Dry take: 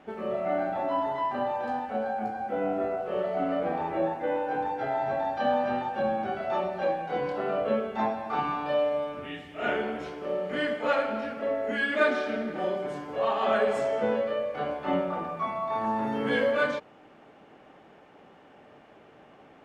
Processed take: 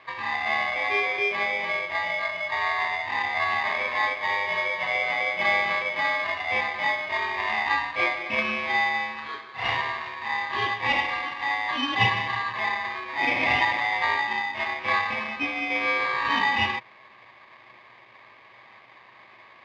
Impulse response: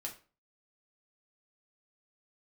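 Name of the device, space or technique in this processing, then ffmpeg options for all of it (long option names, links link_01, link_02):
ring modulator pedal into a guitar cabinet: -af "aeval=exprs='val(0)*sgn(sin(2*PI*1400*n/s))':channel_layout=same,highpass=110,equalizer=frequency=120:width_type=q:width=4:gain=10,equalizer=frequency=170:width_type=q:width=4:gain=-6,equalizer=frequency=370:width_type=q:width=4:gain=4,equalizer=frequency=1100:width_type=q:width=4:gain=7,equalizer=frequency=2300:width_type=q:width=4:gain=7,lowpass=frequency=3900:width=0.5412,lowpass=frequency=3900:width=1.3066"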